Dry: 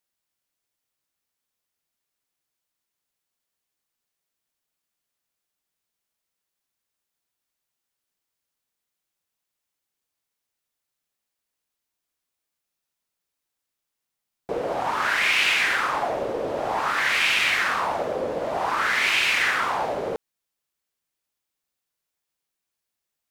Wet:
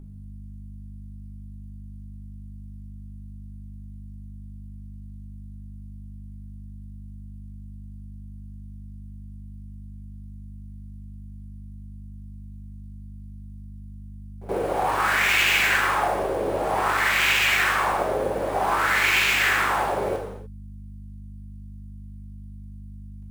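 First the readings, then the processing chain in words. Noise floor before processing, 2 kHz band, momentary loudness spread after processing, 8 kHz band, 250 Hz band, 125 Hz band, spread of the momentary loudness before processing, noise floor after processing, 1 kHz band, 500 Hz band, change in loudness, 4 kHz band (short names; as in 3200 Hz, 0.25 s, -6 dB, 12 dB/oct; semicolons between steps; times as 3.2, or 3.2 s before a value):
-84 dBFS, +1.0 dB, 9 LU, +3.0 dB, +4.0 dB, +12.5 dB, 9 LU, -40 dBFS, +2.0 dB, +1.5 dB, +1.0 dB, 0.0 dB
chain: hum 50 Hz, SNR 10 dB; in parallel at -4.5 dB: sample-rate reducer 9800 Hz, jitter 20%; on the sum: reverse echo 76 ms -19.5 dB; non-linear reverb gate 0.32 s falling, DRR 0 dB; gain -5 dB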